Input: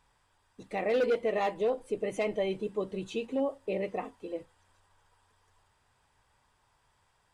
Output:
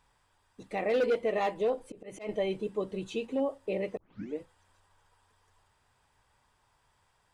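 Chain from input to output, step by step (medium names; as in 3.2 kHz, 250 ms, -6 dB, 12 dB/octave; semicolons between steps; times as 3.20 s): 1.63–2.29 s: slow attack 174 ms; 3.97 s: tape start 0.42 s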